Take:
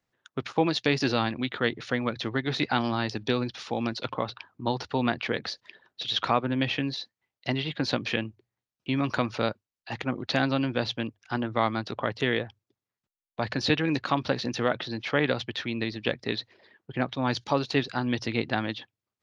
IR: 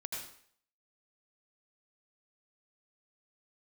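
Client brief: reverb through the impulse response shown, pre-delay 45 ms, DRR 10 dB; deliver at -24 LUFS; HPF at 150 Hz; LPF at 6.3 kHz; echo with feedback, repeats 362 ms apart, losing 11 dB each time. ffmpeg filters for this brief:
-filter_complex "[0:a]highpass=150,lowpass=6300,aecho=1:1:362|724|1086:0.282|0.0789|0.0221,asplit=2[s0][s1];[1:a]atrim=start_sample=2205,adelay=45[s2];[s1][s2]afir=irnorm=-1:irlink=0,volume=0.299[s3];[s0][s3]amix=inputs=2:normalize=0,volume=1.78"

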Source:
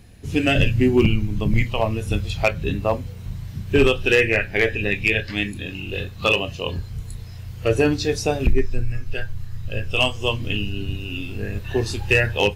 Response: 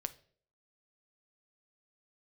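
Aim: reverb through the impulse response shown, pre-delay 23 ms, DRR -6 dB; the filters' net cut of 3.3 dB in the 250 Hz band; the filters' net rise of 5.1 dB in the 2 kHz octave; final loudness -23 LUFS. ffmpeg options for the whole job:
-filter_complex "[0:a]equalizer=f=250:t=o:g=-4.5,equalizer=f=2000:t=o:g=7,asplit=2[s0][s1];[1:a]atrim=start_sample=2205,adelay=23[s2];[s1][s2]afir=irnorm=-1:irlink=0,volume=2.24[s3];[s0][s3]amix=inputs=2:normalize=0,volume=0.299"

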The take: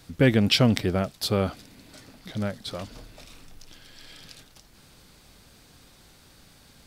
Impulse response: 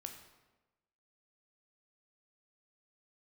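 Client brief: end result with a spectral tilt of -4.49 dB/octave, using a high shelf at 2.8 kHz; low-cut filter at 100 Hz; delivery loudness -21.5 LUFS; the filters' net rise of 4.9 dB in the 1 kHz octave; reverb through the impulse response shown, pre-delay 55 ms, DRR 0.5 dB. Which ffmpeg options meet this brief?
-filter_complex "[0:a]highpass=100,equalizer=f=1000:t=o:g=6,highshelf=f=2800:g=6,asplit=2[s0][s1];[1:a]atrim=start_sample=2205,adelay=55[s2];[s1][s2]afir=irnorm=-1:irlink=0,volume=1.41[s3];[s0][s3]amix=inputs=2:normalize=0,volume=0.891"

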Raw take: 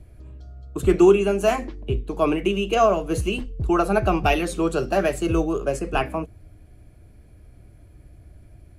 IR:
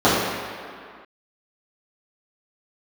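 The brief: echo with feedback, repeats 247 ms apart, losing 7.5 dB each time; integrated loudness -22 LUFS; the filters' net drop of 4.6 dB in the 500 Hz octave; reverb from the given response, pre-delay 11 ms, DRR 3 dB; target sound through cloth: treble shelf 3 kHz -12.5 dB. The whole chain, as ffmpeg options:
-filter_complex "[0:a]equalizer=f=500:t=o:g=-6.5,aecho=1:1:247|494|741|988|1235:0.422|0.177|0.0744|0.0312|0.0131,asplit=2[s0][s1];[1:a]atrim=start_sample=2205,adelay=11[s2];[s1][s2]afir=irnorm=-1:irlink=0,volume=0.0376[s3];[s0][s3]amix=inputs=2:normalize=0,highshelf=f=3000:g=-12.5"

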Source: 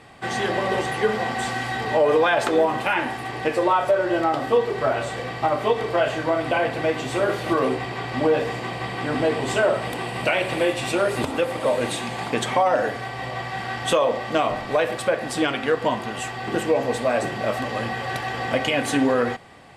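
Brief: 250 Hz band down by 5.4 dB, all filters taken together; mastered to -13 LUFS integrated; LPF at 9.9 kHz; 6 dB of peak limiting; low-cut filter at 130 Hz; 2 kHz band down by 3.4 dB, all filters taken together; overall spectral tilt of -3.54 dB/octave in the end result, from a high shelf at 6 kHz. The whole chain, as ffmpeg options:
-af "highpass=130,lowpass=9900,equalizer=f=250:t=o:g=-7,equalizer=f=2000:t=o:g=-5,highshelf=f=6000:g=6.5,volume=4.47,alimiter=limit=0.891:level=0:latency=1"

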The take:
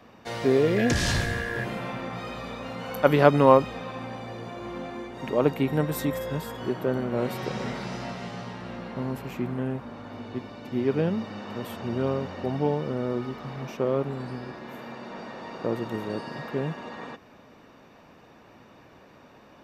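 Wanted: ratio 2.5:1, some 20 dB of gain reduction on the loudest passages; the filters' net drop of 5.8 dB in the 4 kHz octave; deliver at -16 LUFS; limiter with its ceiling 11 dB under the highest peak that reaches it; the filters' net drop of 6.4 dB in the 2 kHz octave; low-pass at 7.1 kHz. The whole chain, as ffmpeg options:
-af "lowpass=7100,equalizer=f=2000:t=o:g=-7.5,equalizer=f=4000:t=o:g=-4.5,acompressor=threshold=0.00708:ratio=2.5,volume=26.6,alimiter=limit=0.562:level=0:latency=1"

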